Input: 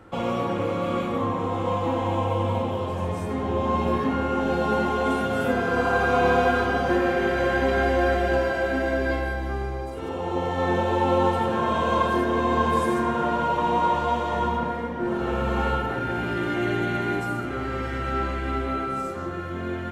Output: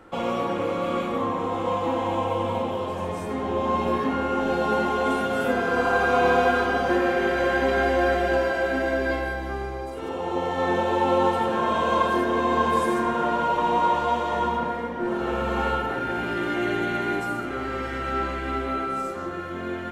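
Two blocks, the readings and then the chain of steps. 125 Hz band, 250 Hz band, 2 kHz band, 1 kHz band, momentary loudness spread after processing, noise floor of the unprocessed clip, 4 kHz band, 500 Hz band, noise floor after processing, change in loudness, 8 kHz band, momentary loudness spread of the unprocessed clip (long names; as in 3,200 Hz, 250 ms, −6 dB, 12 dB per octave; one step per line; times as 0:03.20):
−6.0 dB, −1.0 dB, +1.0 dB, +1.0 dB, 8 LU, −31 dBFS, +1.0 dB, +0.5 dB, −32 dBFS, 0.0 dB, can't be measured, 7 LU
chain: parametric band 100 Hz −9 dB 1.6 octaves
level +1 dB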